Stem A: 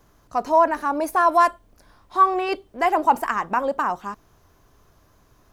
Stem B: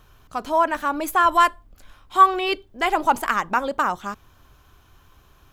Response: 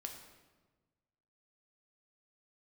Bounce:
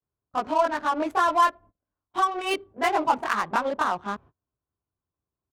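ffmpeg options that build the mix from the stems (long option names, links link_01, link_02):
-filter_complex "[0:a]highpass=220,volume=-7dB,asplit=2[link_01][link_02];[link_02]volume=-20.5dB[link_03];[1:a]acompressor=threshold=-23dB:ratio=4,adelay=22,volume=0.5dB[link_04];[2:a]atrim=start_sample=2205[link_05];[link_03][link_05]afir=irnorm=-1:irlink=0[link_06];[link_01][link_04][link_06]amix=inputs=3:normalize=0,highpass=87,agate=range=-30dB:threshold=-46dB:ratio=16:detection=peak,adynamicsmooth=sensitivity=4:basefreq=920"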